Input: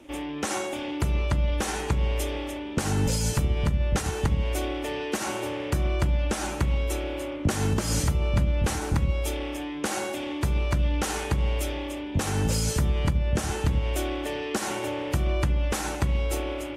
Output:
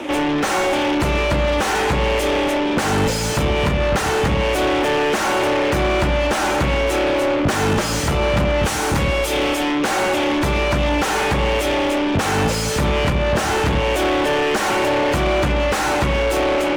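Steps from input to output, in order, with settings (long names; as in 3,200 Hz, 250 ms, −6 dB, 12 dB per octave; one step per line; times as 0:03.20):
0:08.63–0:09.71: high-shelf EQ 4,400 Hz +10.5 dB
mid-hump overdrive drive 31 dB, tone 1,900 Hz, clips at −14 dBFS
level +4 dB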